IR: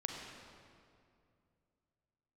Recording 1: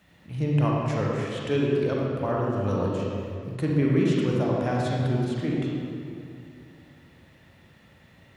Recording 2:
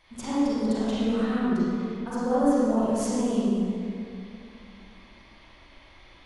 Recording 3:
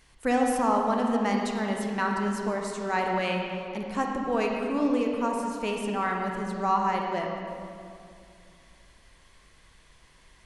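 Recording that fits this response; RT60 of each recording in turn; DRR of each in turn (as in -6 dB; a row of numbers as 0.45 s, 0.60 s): 3; 2.4 s, 2.4 s, 2.4 s; -3.5 dB, -11.0 dB, 0.5 dB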